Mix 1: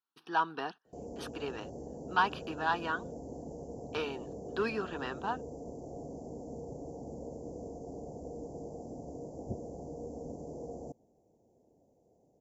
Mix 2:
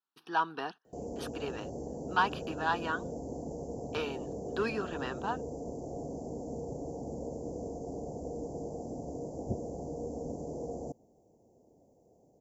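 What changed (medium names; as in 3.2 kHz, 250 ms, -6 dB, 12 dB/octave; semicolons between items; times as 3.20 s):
background +4.0 dB; master: add treble shelf 12 kHz +9 dB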